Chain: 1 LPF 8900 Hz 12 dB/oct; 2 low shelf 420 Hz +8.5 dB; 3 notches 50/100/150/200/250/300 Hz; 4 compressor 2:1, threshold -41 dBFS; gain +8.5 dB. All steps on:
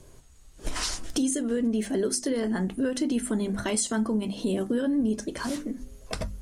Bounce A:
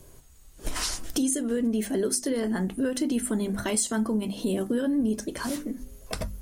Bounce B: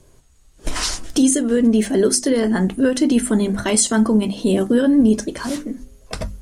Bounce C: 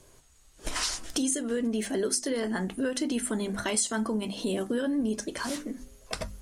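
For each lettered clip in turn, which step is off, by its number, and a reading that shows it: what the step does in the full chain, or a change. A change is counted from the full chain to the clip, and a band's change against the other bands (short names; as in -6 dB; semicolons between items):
1, 8 kHz band +1.5 dB; 4, mean gain reduction 8.0 dB; 2, 125 Hz band -5.0 dB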